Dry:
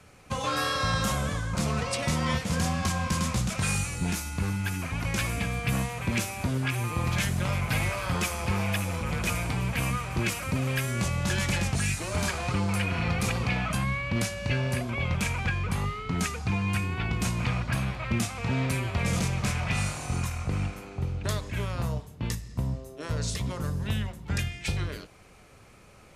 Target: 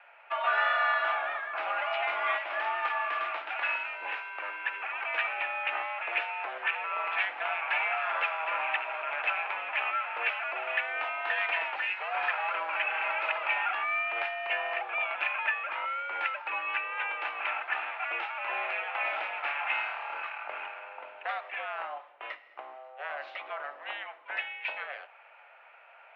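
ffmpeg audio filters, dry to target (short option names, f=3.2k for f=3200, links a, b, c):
-af "highpass=f=560:t=q:w=0.5412,highpass=f=560:t=q:w=1.307,lowpass=f=2.6k:t=q:w=0.5176,lowpass=f=2.6k:t=q:w=0.7071,lowpass=f=2.6k:t=q:w=1.932,afreqshift=120,bandreject=f=1.1k:w=14,volume=4dB"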